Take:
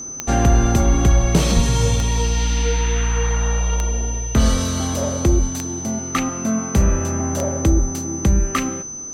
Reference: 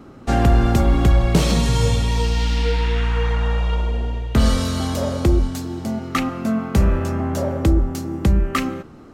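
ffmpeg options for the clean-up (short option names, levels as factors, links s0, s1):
-filter_complex "[0:a]adeclick=t=4,bandreject=f=6100:w=30,asplit=3[s0][s1][s2];[s0]afade=t=out:st=1.55:d=0.02[s3];[s1]highpass=f=140:w=0.5412,highpass=f=140:w=1.3066,afade=t=in:st=1.55:d=0.02,afade=t=out:st=1.67:d=0.02[s4];[s2]afade=t=in:st=1.67:d=0.02[s5];[s3][s4][s5]amix=inputs=3:normalize=0"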